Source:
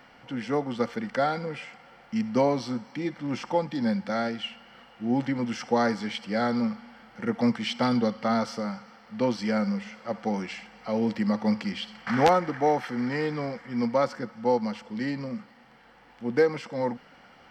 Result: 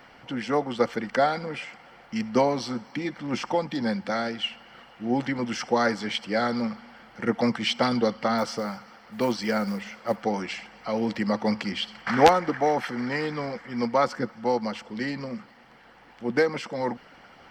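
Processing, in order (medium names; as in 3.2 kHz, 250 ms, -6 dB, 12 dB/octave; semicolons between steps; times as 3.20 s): 8.38–10.23 s: short-mantissa float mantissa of 4-bit; harmonic-percussive split harmonic -8 dB; trim +6 dB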